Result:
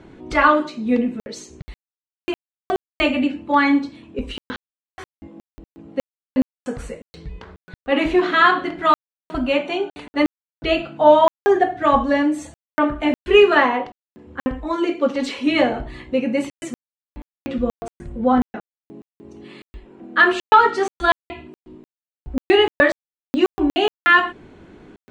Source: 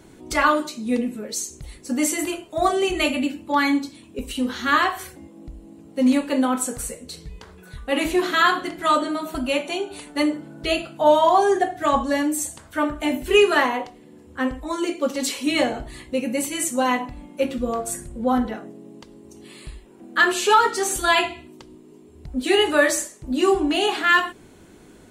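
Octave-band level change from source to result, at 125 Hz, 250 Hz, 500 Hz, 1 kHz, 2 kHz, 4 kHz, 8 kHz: +3.0 dB, +2.0 dB, +2.5 dB, +2.0 dB, +2.5 dB, -1.0 dB, under -15 dB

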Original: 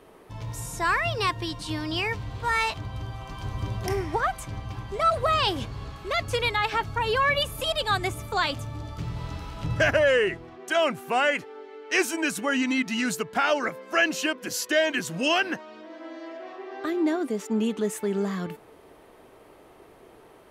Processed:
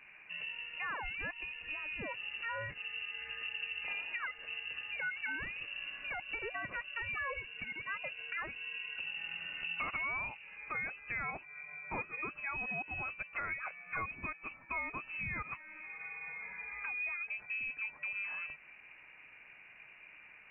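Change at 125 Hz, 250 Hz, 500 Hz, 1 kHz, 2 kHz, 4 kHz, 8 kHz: -21.5 dB, -25.5 dB, -24.5 dB, -17.0 dB, -8.5 dB, -15.5 dB, under -40 dB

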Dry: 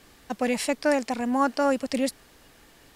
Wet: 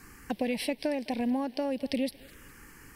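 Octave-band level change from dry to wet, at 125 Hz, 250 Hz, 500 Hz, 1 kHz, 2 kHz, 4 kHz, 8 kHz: no reading, -4.0 dB, -7.0 dB, -11.0 dB, -8.5 dB, -3.5 dB, -10.5 dB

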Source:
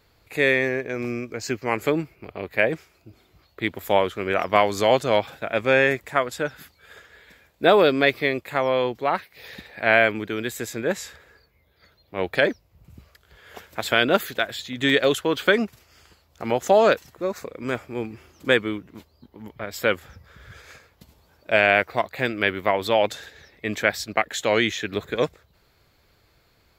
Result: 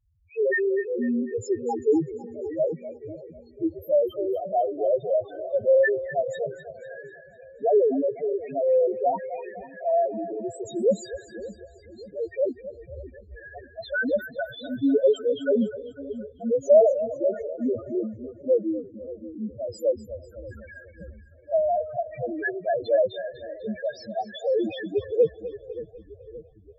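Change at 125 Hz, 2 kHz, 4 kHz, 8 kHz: -8.5 dB, -11.5 dB, -17.5 dB, under -10 dB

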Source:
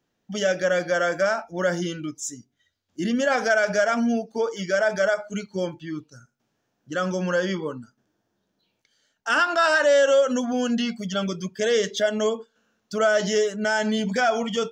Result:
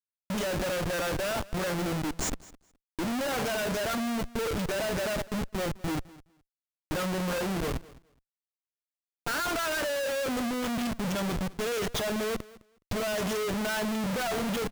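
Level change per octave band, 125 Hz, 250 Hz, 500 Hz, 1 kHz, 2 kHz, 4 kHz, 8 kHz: -0.5 dB, -4.5 dB, -9.5 dB, -7.0 dB, -9.0 dB, -4.5 dB, -2.5 dB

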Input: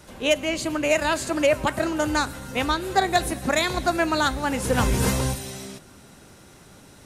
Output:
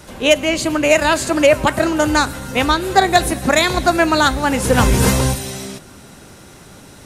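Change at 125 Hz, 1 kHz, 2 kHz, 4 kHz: +8.0 dB, +8.0 dB, +8.0 dB, +8.0 dB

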